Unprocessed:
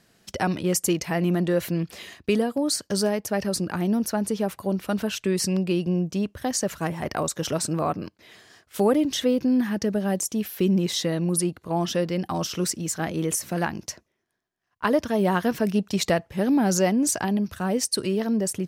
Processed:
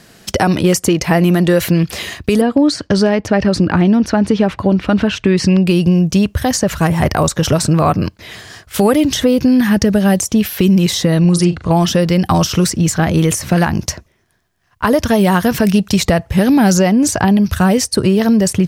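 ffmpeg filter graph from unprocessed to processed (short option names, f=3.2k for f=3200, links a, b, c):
-filter_complex "[0:a]asettb=1/sr,asplit=3[a][b][c];[a]atrim=end=2.414[d];[b]atrim=start=2.41:end=5.67,asetpts=PTS-STARTPTS,afade=t=in:d=0.004:c=qsin,afade=t=out:st=3.256:d=0.004:c=qsin,lowpass=3.2k,equalizer=f=290:t=o:w=0.41:g=7[e];[c]atrim=start=5.666[f];[d][e]acrossfade=d=0.004:c1=hsin:c2=qsin[g];[g][f]acrossfade=d=0.004:c1=qsin:c2=hsin,asettb=1/sr,asplit=3[h][i][j];[h]atrim=end=11.204[k];[i]atrim=start=11.2:end=11.71,asetpts=PTS-STARTPTS,afade=t=in:d=0.004:c=qsin,afade=t=out:st=0.506:d=0.004:c=qsin,lowpass=f=7.7k:w=0.5412,lowpass=f=7.7k:w=1.3066,asplit=2[l][m];[m]adelay=40,volume=-10dB[n];[l][n]amix=inputs=2:normalize=0,atrim=end_sample=22491[o];[j]atrim=start=11.706[p];[k][o]acrossfade=d=0.004:c1=hsin:c2=qsin[q];[q][p]acrossfade=d=0.004:c1=qsin:c2=hsin,asubboost=boost=3.5:cutoff=140,acrossover=split=1600|5400[r][s][t];[r]acompressor=threshold=-26dB:ratio=4[u];[s]acompressor=threshold=-41dB:ratio=4[v];[t]acompressor=threshold=-41dB:ratio=4[w];[u][v][w]amix=inputs=3:normalize=0,alimiter=level_in=18dB:limit=-1dB:release=50:level=0:latency=1,volume=-1dB"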